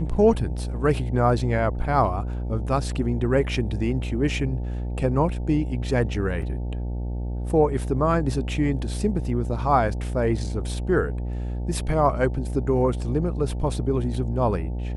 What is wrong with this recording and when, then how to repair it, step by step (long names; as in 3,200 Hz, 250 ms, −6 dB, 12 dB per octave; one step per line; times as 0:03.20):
mains buzz 60 Hz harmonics 15 −28 dBFS
0:06.42: drop-out 2.6 ms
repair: hum removal 60 Hz, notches 15
repair the gap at 0:06.42, 2.6 ms